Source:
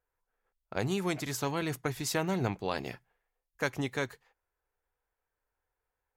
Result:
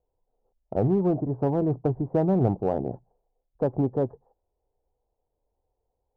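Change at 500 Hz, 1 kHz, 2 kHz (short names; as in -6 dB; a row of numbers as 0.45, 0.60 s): +9.5, +3.5, -16.0 dB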